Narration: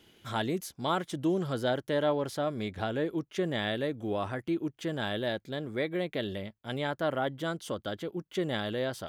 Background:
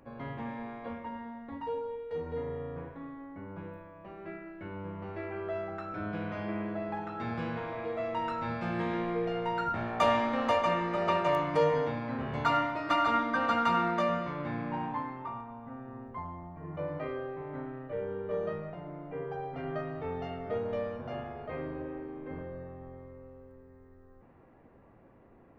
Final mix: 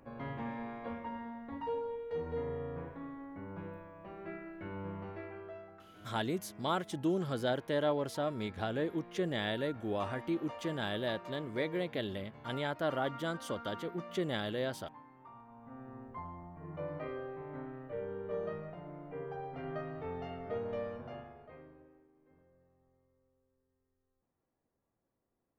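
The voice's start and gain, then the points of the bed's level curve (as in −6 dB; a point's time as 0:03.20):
5.80 s, −3.5 dB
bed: 0:04.96 −1.5 dB
0:05.92 −19.5 dB
0:15.07 −19.5 dB
0:15.82 −4.5 dB
0:20.97 −4.5 dB
0:22.12 −26.5 dB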